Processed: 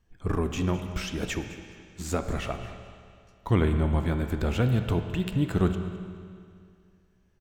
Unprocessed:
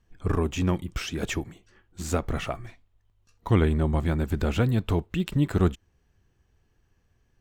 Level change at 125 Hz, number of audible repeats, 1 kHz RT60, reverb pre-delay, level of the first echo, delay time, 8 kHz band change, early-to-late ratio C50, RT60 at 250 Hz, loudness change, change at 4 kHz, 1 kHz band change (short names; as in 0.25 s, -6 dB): -1.0 dB, 1, 2.3 s, 16 ms, -17.0 dB, 0.211 s, -1.5 dB, 7.5 dB, 2.3 s, -1.5 dB, -1.0 dB, -1.0 dB